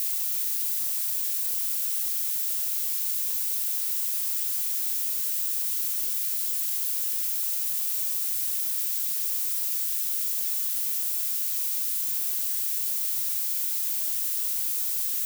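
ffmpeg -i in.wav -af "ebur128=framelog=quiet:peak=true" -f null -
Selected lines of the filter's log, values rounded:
Integrated loudness:
  I:         -24.3 LUFS
  Threshold: -34.3 LUFS
Loudness range:
  LRA:         0.0 LU
  Threshold: -44.3 LUFS
  LRA low:   -24.3 LUFS
  LRA high:  -24.3 LUFS
True peak:
  Peak:      -13.8 dBFS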